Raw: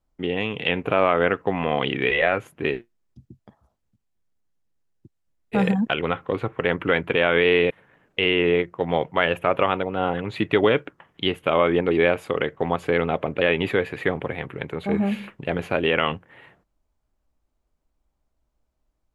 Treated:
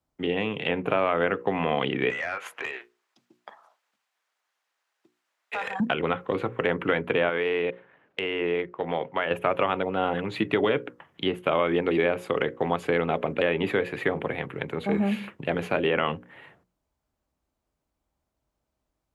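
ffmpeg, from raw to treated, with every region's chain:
-filter_complex "[0:a]asettb=1/sr,asplit=3[s0][s1][s2];[s0]atrim=end=2.104[s3];[s1]atrim=start=2.1:end=5.8,asetpts=PTS-STARTPTS,afade=t=in:d=0.004:c=qsin,afade=t=out:st=3.696:d=0.004:c=qsin,highpass=940,acompressor=threshold=0.00794:ratio=4:attack=3.2:release=140:knee=1:detection=peak,asplit=2[s4][s5];[s5]highpass=f=720:p=1,volume=17.8,asoftclip=type=tanh:threshold=0.2[s6];[s4][s6]amix=inputs=2:normalize=0,lowpass=f=1800:p=1,volume=0.501[s7];[s2]atrim=start=5.796[s8];[s3][s7]acrossfade=d=0.004:c1=hsin:c2=qsin[s9];[s9][s8]acrossfade=d=0.004:c1=qsin:c2=hsin,asettb=1/sr,asplit=3[s10][s11][s12];[s10]atrim=end=7.294[s13];[s11]atrim=start=7.29:end=9.31,asetpts=PTS-STARTPTS,afade=t=in:d=0.004:c=qsin,afade=t=out:st=2.016:d=0.004:c=qsin,lowpass=3900,lowshelf=f=190:g=-10.5,acompressor=threshold=0.0708:ratio=2:attack=3.2:release=140:knee=1:detection=peak[s14];[s12]atrim=start=9.306[s15];[s13][s14]acrossfade=d=0.004:c1=hsin:c2=qsin[s16];[s16][s15]acrossfade=d=0.004:c1=qsin:c2=hsin,bandreject=f=60:t=h:w=6,bandreject=f=120:t=h:w=6,bandreject=f=180:t=h:w=6,bandreject=f=240:t=h:w=6,bandreject=f=300:t=h:w=6,bandreject=f=360:t=h:w=6,bandreject=f=420:t=h:w=6,bandreject=f=480:t=h:w=6,bandreject=f=540:t=h:w=6,acrossover=split=120|1700[s17][s18][s19];[s17]acompressor=threshold=0.00398:ratio=4[s20];[s18]acompressor=threshold=0.1:ratio=4[s21];[s19]acompressor=threshold=0.0251:ratio=4[s22];[s20][s21][s22]amix=inputs=3:normalize=0,highpass=69"

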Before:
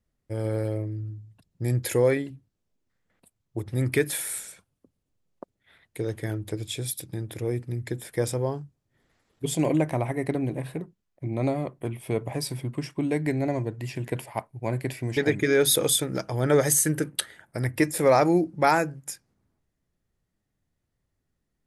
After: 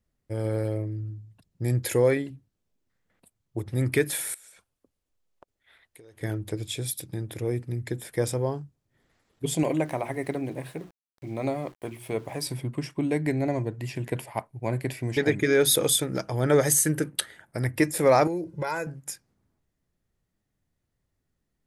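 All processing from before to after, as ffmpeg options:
-filter_complex "[0:a]asettb=1/sr,asplit=3[s0][s1][s2];[s0]atrim=end=4.344[s3];[s1]atrim=start=4.34:end=6.21,asetpts=PTS-STARTPTS,afade=t=in:d=0.004:c=qsin,afade=t=out:st=1.866:d=0.004:c=qsin,equalizer=f=150:t=o:w=2.1:g=-11.5,acompressor=threshold=0.00447:ratio=12:attack=3.2:release=140:knee=1:detection=peak[s4];[s2]atrim=start=6.206[s5];[s3][s4]acrossfade=d=0.004:c1=hsin:c2=qsin[s6];[s6][s5]acrossfade=d=0.004:c1=qsin:c2=hsin,asettb=1/sr,asplit=3[s7][s8][s9];[s7]atrim=end=9.634[s10];[s8]atrim=start=9.63:end=12.47,asetpts=PTS-STARTPTS,afade=t=in:d=0.004:c=qsin,afade=t=out:st=2.836:d=0.004:c=qsin,lowshelf=f=270:g=-6.5,bandreject=f=60:t=h:w=6,bandreject=f=120:t=h:w=6,bandreject=f=180:t=h:w=6,bandreject=f=240:t=h:w=6,bandreject=f=300:t=h:w=6,bandreject=f=360:t=h:w=6,aeval=exprs='val(0)*gte(abs(val(0)),0.00316)':c=same[s11];[s9]atrim=start=12.466[s12];[s10][s11]acrossfade=d=0.004:c1=hsin:c2=qsin[s13];[s13][s12]acrossfade=d=0.004:c1=qsin:c2=hsin,asettb=1/sr,asplit=3[s14][s15][s16];[s14]atrim=end=18.274[s17];[s15]atrim=start=18.27:end=18.87,asetpts=PTS-STARTPTS,afade=t=in:d=0.004:c=qsin,afade=t=out:st=0.596:d=0.004:c=qsin,aecho=1:1:2:0.94,atrim=end_sample=26460,acompressor=threshold=0.0398:ratio=4:attack=3.2:release=140:knee=1:detection=peak[s18];[s16]atrim=start=18.866[s19];[s17][s18]acrossfade=d=0.004:c1=hsin:c2=qsin[s20];[s20][s19]acrossfade=d=0.004:c1=qsin:c2=hsin"

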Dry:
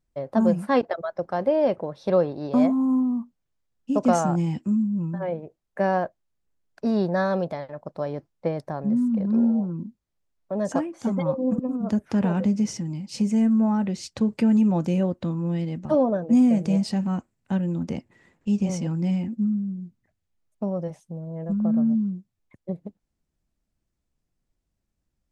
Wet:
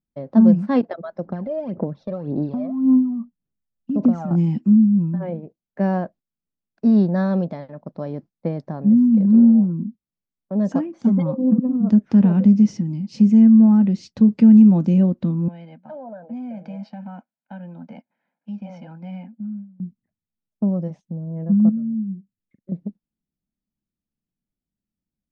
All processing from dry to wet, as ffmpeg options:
-filter_complex "[0:a]asettb=1/sr,asplit=3[s0][s1][s2];[s0]atrim=end=1.264[s3];[s1]atrim=start=1.26:end=4.31,asetpts=PTS-STARTPTS,afade=t=in:d=0.004:c=qsin,afade=t=out:st=3.046:d=0.004:c=qsin,highshelf=f=3300:g=-11.5,acompressor=threshold=0.0447:ratio=4:attack=3.2:release=140:knee=1:detection=peak,aphaser=in_gain=1:out_gain=1:delay=1.7:decay=0.64:speed=1.8:type=sinusoidal[s4];[s2]atrim=start=4.306[s5];[s3][s4]acrossfade=d=0.004:c1=hsin:c2=qsin[s6];[s6][s5]acrossfade=d=0.004:c1=qsin:c2=hsin,asettb=1/sr,asplit=3[s7][s8][s9];[s7]atrim=end=15.484[s10];[s8]atrim=start=15.48:end=19.8,asetpts=PTS-STARTPTS,afade=t=in:d=0.004:c=qsin,afade=t=out:st=4.316:d=0.004:c=qsin,highpass=570,lowpass=2200,acompressor=threshold=0.0141:ratio=3:attack=3.2:release=140:knee=1:detection=peak,aecho=1:1:1.3:0.92,atrim=end_sample=190512[s11];[s9]atrim=start=19.796[s12];[s10][s11]acrossfade=d=0.004:c1=hsin:c2=qsin[s13];[s13][s12]acrossfade=d=0.004:c1=qsin:c2=hsin,asettb=1/sr,asplit=3[s14][s15][s16];[s14]atrim=end=21.694[s17];[s15]atrim=start=21.69:end=22.72,asetpts=PTS-STARTPTS,afade=t=in:d=0.004:c=qsin,afade=t=out:st=1.026:d=0.004:c=qsin,acompressor=threshold=0.00794:ratio=2:attack=3.2:release=140:knee=1:detection=peak,asuperstop=centerf=850:order=12:qfactor=1.4,asplit=2[s18][s19];[s19]adelay=41,volume=0.237[s20];[s18][s20]amix=inputs=2:normalize=0,atrim=end_sample=45423[s21];[s16]atrim=start=22.716[s22];[s17][s21]acrossfade=d=0.004:c1=hsin:c2=qsin[s23];[s23][s22]acrossfade=d=0.004:c1=qsin:c2=hsin,lowpass=f=5900:w=0.5412,lowpass=f=5900:w=1.3066,agate=range=0.316:threshold=0.00708:ratio=16:detection=peak,equalizer=f=210:w=1.1:g=14,volume=0.596"

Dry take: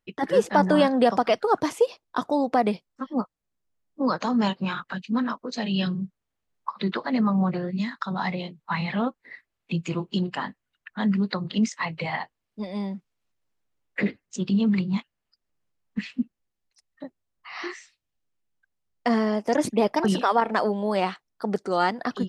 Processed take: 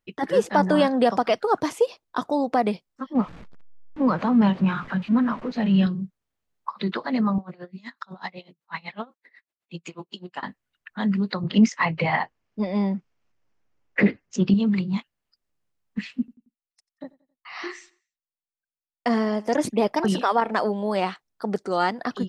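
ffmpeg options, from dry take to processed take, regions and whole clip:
-filter_complex "[0:a]asettb=1/sr,asplit=3[s0][s1][s2];[s0]atrim=end=3.154[s3];[s1]atrim=start=3.15:end=5.87,asetpts=PTS-STARTPTS,afade=t=in:d=0.004:c=qsin,afade=t=out:st=2.716:d=0.004:c=qsin,aeval=exprs='val(0)+0.5*0.0188*sgn(val(0))':c=same,lowpass=2400,equalizer=f=170:t=o:w=1.1:g=7[s4];[s2]atrim=start=5.866[s5];[s3][s4]acrossfade=d=0.004:c1=hsin:c2=qsin[s6];[s6][s5]acrossfade=d=0.004:c1=qsin:c2=hsin,asettb=1/sr,asplit=3[s7][s8][s9];[s7]atrim=end=7.384[s10];[s8]atrim=start=7.38:end=10.43,asetpts=PTS-STARTPTS,afade=t=in:d=0.004:c=qsin,afade=t=out:st=3.046:d=0.004:c=qsin,highpass=f=420:p=1,aeval=exprs='val(0)*pow(10,-25*(0.5-0.5*cos(2*PI*8*n/s))/20)':c=same[s11];[s9]atrim=start=10.426[s12];[s10][s11]acrossfade=d=0.004:c1=hsin:c2=qsin[s13];[s13][s12]acrossfade=d=0.004:c1=qsin:c2=hsin,asettb=1/sr,asplit=3[s14][s15][s16];[s14]atrim=end=11.434[s17];[s15]atrim=start=11.43:end=14.54,asetpts=PTS-STARTPTS,afade=t=in:d=0.004:c=qsin,afade=t=out:st=3.106:d=0.004:c=qsin,lowpass=f=5900:w=0.5412,lowpass=f=5900:w=1.3066,equalizer=f=3900:w=1.9:g=-8,acontrast=77[s18];[s16]atrim=start=14.536[s19];[s17][s18]acrossfade=d=0.004:c1=hsin:c2=qsin[s20];[s20][s19]acrossfade=d=0.004:c1=qsin:c2=hsin,asettb=1/sr,asplit=3[s21][s22][s23];[s21]atrim=end=16.194[s24];[s22]atrim=start=16.19:end=19.59,asetpts=PTS-STARTPTS,afade=t=in:d=0.004:c=qsin,afade=t=out:st=3.396:d=0.004:c=qsin,agate=range=0.0501:threshold=0.001:ratio=16:release=100:detection=peak,aecho=1:1:90|180|270:0.0708|0.029|0.0119,atrim=end_sample=149940[s25];[s23]atrim=start=19.586[s26];[s24][s25]acrossfade=d=0.004:c1=hsin:c2=qsin[s27];[s27][s26]acrossfade=d=0.004:c1=qsin:c2=hsin"

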